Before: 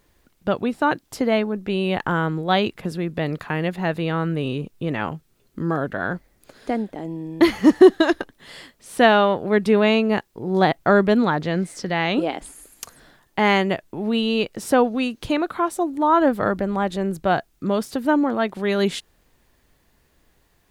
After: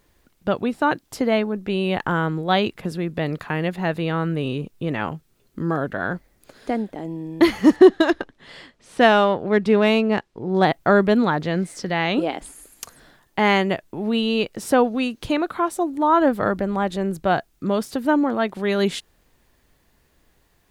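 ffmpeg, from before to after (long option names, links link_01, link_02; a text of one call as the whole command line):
ffmpeg -i in.wav -filter_complex "[0:a]asettb=1/sr,asplit=3[link_01][link_02][link_03];[link_01]atrim=end=7.764[link_04];[link_02]atrim=start=7.76:end=10.65,asetpts=PTS-STARTPTS,afade=type=in:duration=0.004:curve=qsin,afade=type=out:start_time=2.886:duration=0.004:curve=qsin,adynamicsmooth=sensitivity=2:basefreq=6000[link_05];[link_03]atrim=start=10.646[link_06];[link_04][link_05]acrossfade=duration=0.004:curve1=hsin:curve2=qsin[link_07];[link_07][link_06]acrossfade=duration=0.004:curve1=qsin:curve2=hsin" out.wav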